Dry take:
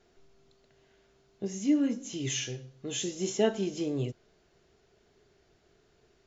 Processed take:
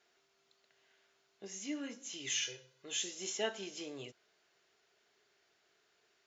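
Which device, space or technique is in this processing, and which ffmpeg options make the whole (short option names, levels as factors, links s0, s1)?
filter by subtraction: -filter_complex "[0:a]asettb=1/sr,asplit=3[s0][s1][s2];[s0]atrim=end=2.424[s3];[s1]atrim=start=2.42:end=2.85,asetpts=PTS-STARTPTS,afade=t=in:d=0.004:c=qsin,afade=t=out:st=0.426:d=0.004:c=qsin,aecho=1:1:2:0.67,atrim=end_sample=18963[s4];[s2]atrim=start=2.846[s5];[s3][s4]acrossfade=d=0.004:c1=hsin:c2=qsin[s6];[s6][s5]acrossfade=d=0.004:c1=qsin:c2=hsin,asplit=2[s7][s8];[s8]lowpass=1800,volume=-1[s9];[s7][s9]amix=inputs=2:normalize=0,volume=0.708"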